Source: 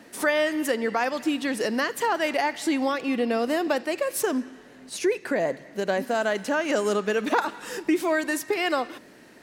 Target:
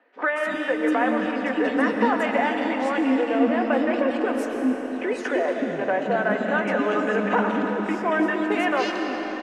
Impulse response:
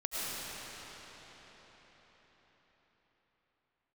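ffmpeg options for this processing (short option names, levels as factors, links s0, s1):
-filter_complex "[0:a]lowpass=7200,afwtdn=0.02,aecho=1:1:4:0.36,acompressor=threshold=0.0447:ratio=3,acrossover=split=370|2800[s0][s1][s2];[s2]adelay=230[s3];[s0]adelay=310[s4];[s4][s1][s3]amix=inputs=3:normalize=0,asplit=2[s5][s6];[1:a]atrim=start_sample=2205,adelay=19[s7];[s6][s7]afir=irnorm=-1:irlink=0,volume=0.355[s8];[s5][s8]amix=inputs=2:normalize=0,volume=2.24"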